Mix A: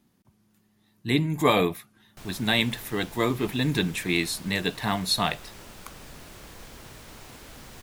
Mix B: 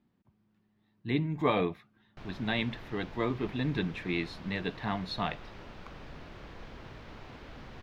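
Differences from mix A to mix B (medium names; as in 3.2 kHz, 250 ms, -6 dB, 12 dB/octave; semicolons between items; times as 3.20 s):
speech -5.5 dB; master: add distance through air 260 m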